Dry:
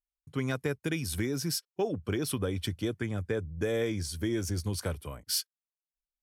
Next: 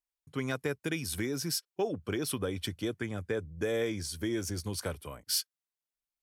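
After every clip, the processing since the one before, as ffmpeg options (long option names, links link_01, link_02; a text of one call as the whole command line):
ffmpeg -i in.wav -af "lowshelf=frequency=170:gain=-7.5" out.wav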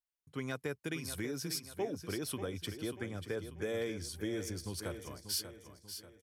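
ffmpeg -i in.wav -af "aecho=1:1:589|1178|1767|2356|2945:0.316|0.136|0.0585|0.0251|0.0108,volume=-5.5dB" out.wav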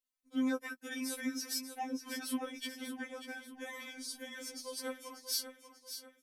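ffmpeg -i in.wav -af "afftfilt=real='re*3.46*eq(mod(b,12),0)':imag='im*3.46*eq(mod(b,12),0)':win_size=2048:overlap=0.75,volume=3.5dB" out.wav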